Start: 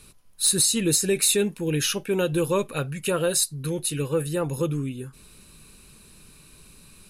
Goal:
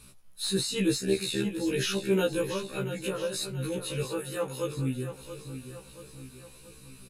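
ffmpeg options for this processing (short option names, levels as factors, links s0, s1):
-filter_complex "[0:a]acrossover=split=4500[s0][s1];[s1]acompressor=threshold=0.0178:ratio=4:attack=1:release=60[s2];[s0][s2]amix=inputs=2:normalize=0,asettb=1/sr,asplit=3[s3][s4][s5];[s3]atrim=end=1.014[s6];[s4]atrim=start=1.01:end=1.45,asetpts=PTS-STARTPTS,afade=t=in:d=0.004:c=qsin,afade=t=out:st=0.436:d=0.004:c=qsin,tremolo=f=78:d=0.889[s7];[s5]atrim=start=1.446[s8];[s6][s7]acrossfade=d=0.004:c1=hsin:c2=qsin[s9];[s9][s8]acrossfade=d=0.004:c1=qsin:c2=hsin,asettb=1/sr,asplit=3[s10][s11][s12];[s10]atrim=end=2.414[s13];[s11]atrim=start=2.41:end=3.34,asetpts=PTS-STARTPTS,afade=t=in:d=0.004:c=qsin,afade=t=out:st=0.926:d=0.004:c=qsin,acompressor=threshold=0.0251:ratio=2.5[s14];[s12]atrim=start=3.336[s15];[s13][s14]acrossfade=d=0.004:c1=hsin:c2=qsin[s16];[s16][s15]acrossfade=d=0.004:c1=qsin:c2=hsin,asettb=1/sr,asplit=3[s17][s18][s19];[s17]atrim=end=4.034[s20];[s18]atrim=start=4.03:end=4.79,asetpts=PTS-STARTPTS,afade=t=in:d=0.004:c=qsin,afade=t=out:st=0.756:d=0.004:c=qsin,highpass=f=500:p=1[s21];[s19]atrim=start=4.786[s22];[s20][s21]acrossfade=d=0.004:c1=hsin:c2=qsin[s23];[s23][s22]acrossfade=d=0.004:c1=qsin:c2=hsin,aecho=1:1:680|1360|2040|2720|3400:0.299|0.146|0.0717|0.0351|0.0172,afftfilt=real='re*1.73*eq(mod(b,3),0)':imag='im*1.73*eq(mod(b,3),0)':win_size=2048:overlap=0.75"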